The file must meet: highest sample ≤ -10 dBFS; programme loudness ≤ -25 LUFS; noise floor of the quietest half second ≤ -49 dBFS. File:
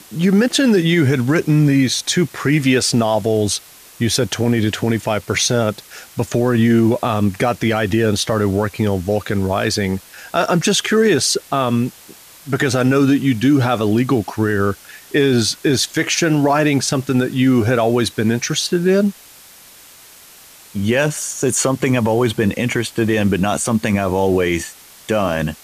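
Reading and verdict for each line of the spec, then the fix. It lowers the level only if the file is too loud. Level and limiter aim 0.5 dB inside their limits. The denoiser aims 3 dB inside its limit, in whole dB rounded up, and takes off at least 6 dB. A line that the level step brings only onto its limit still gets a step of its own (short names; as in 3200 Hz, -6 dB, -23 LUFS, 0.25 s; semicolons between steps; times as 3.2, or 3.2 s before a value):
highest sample -5.5 dBFS: fail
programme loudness -17.0 LUFS: fail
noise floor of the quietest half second -43 dBFS: fail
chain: gain -8.5 dB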